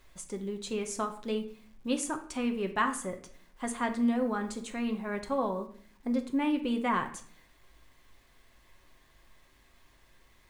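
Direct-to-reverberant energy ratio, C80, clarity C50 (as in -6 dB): 4.5 dB, 15.0 dB, 11.0 dB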